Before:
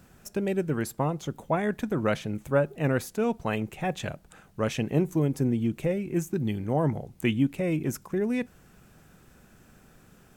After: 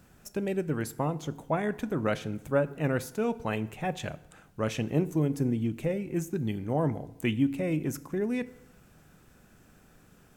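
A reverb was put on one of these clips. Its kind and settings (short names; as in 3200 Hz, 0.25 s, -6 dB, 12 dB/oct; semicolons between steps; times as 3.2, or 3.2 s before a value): FDN reverb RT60 0.89 s, low-frequency decay 1×, high-frequency decay 0.75×, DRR 14.5 dB; gain -2.5 dB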